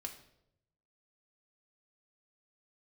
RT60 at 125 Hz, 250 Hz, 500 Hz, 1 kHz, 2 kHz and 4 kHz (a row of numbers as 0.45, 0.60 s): 1.3, 0.90, 0.90, 0.65, 0.60, 0.60 s